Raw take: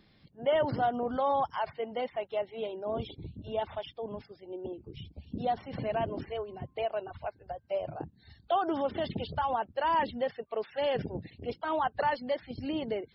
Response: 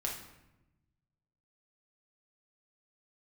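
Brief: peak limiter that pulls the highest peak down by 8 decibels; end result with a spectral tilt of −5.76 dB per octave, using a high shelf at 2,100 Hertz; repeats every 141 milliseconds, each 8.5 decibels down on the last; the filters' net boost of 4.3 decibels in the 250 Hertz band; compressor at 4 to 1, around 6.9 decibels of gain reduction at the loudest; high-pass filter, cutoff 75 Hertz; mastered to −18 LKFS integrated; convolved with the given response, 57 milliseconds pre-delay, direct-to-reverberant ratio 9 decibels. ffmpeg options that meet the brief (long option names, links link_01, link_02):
-filter_complex "[0:a]highpass=75,equalizer=frequency=250:width_type=o:gain=5.5,highshelf=frequency=2100:gain=-6,acompressor=threshold=-31dB:ratio=4,alimiter=level_in=5.5dB:limit=-24dB:level=0:latency=1,volume=-5.5dB,aecho=1:1:141|282|423|564:0.376|0.143|0.0543|0.0206,asplit=2[link_01][link_02];[1:a]atrim=start_sample=2205,adelay=57[link_03];[link_02][link_03]afir=irnorm=-1:irlink=0,volume=-11.5dB[link_04];[link_01][link_04]amix=inputs=2:normalize=0,volume=20dB"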